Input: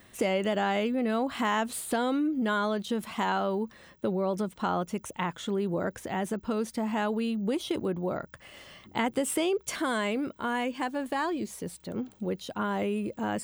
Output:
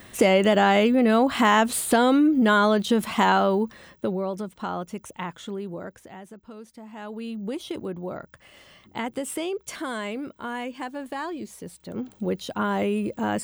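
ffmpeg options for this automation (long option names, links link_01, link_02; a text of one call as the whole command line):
ffmpeg -i in.wav -af "volume=26.5dB,afade=type=out:start_time=3.27:duration=1.1:silence=0.298538,afade=type=out:start_time=5.34:duration=0.9:silence=0.281838,afade=type=in:start_time=6.92:duration=0.47:silence=0.298538,afade=type=in:start_time=11.78:duration=0.47:silence=0.446684" out.wav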